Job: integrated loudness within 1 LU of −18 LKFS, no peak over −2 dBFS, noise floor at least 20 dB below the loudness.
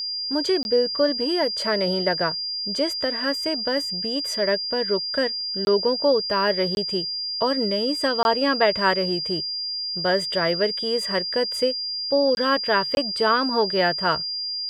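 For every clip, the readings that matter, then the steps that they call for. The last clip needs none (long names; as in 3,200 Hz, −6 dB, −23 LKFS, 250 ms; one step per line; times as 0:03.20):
number of dropouts 6; longest dropout 21 ms; interfering tone 4,800 Hz; level of the tone −26 dBFS; integrated loudness −22.0 LKFS; sample peak −5.5 dBFS; target loudness −18.0 LKFS
→ repair the gap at 0:00.63/0:05.65/0:06.75/0:08.23/0:12.35/0:12.95, 21 ms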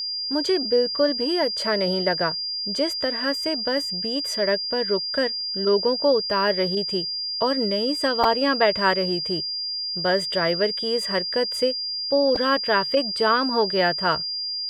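number of dropouts 0; interfering tone 4,800 Hz; level of the tone −26 dBFS
→ notch filter 4,800 Hz, Q 30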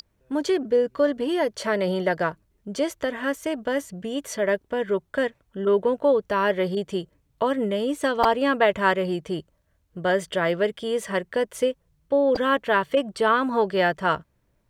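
interfering tone none found; integrated loudness −24.0 LKFS; sample peak −6.5 dBFS; target loudness −18.0 LKFS
→ level +6 dB
brickwall limiter −2 dBFS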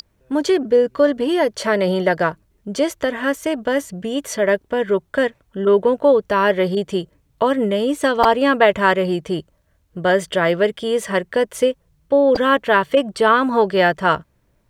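integrated loudness −18.5 LKFS; sample peak −2.0 dBFS; background noise floor −62 dBFS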